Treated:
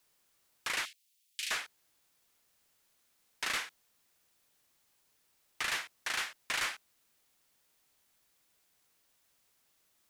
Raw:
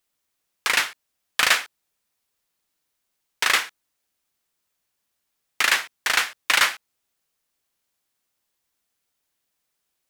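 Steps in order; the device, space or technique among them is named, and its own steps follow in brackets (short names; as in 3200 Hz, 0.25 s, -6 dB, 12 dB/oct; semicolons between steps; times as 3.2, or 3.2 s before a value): compact cassette (soft clip -20.5 dBFS, distortion -7 dB; LPF 12000 Hz 12 dB/oct; wow and flutter; white noise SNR 30 dB); 0.85–1.51 inverse Chebyshev high-pass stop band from 960 Hz, stop band 50 dB; gain -8.5 dB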